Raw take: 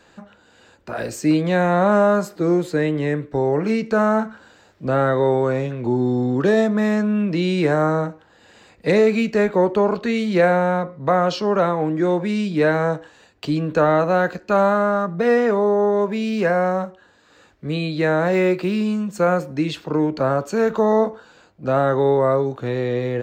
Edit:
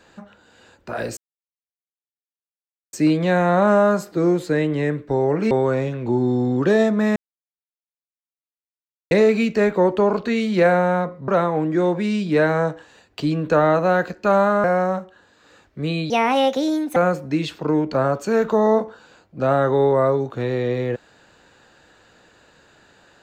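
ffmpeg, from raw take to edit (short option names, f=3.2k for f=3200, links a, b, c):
-filter_complex "[0:a]asplit=9[a][b][c][d][e][f][g][h][i];[a]atrim=end=1.17,asetpts=PTS-STARTPTS,afade=t=out:st=1.166:d=0.004:c=hsin,apad=pad_dur=1.76[j];[b]atrim=start=1.17:end=3.752,asetpts=PTS-STARTPTS,afade=t=in:d=0.004:c=hsin[k];[c]atrim=start=5.288:end=6.94,asetpts=PTS-STARTPTS,afade=t=out:st=1.648:d=0.004:c=hsin[l];[d]atrim=start=6.94:end=8.89,asetpts=PTS-STARTPTS,volume=0[m];[e]atrim=start=8.89:end=11.062,asetpts=PTS-STARTPTS,afade=t=in:d=0.004:c=hsin[n];[f]atrim=start=11.528:end=14.892[o];[g]atrim=start=16.498:end=17.964[p];[h]atrim=start=17.96:end=19.22,asetpts=PTS-STARTPTS,asetrate=64386,aresample=44100[q];[i]atrim=start=19.216[r];[j][k]concat=n=2:v=0:a=1[s];[l][m][n]concat=n=3:v=0:a=1[t];[s][t]acrossfade=d=0.004:c1=hsin:c2=hsin[u];[u][o]acrossfade=d=0.004:c1=hsin:c2=hsin[v];[v][p]acrossfade=d=0.004:c1=hsin:c2=hsin[w];[w][q]acrossfade=d=0.004:c1=hsin:c2=hsin[x];[x][r]acrossfade=d=0.004:c1=hsin:c2=hsin"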